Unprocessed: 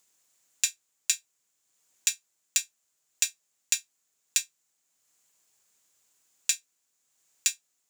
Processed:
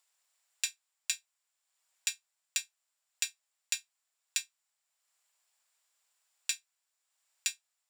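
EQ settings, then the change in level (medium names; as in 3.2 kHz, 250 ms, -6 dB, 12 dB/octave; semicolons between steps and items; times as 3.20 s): high-pass 630 Hz 24 dB/octave; treble shelf 8.2 kHz -7.5 dB; band-stop 6.4 kHz, Q 5.3; -3.0 dB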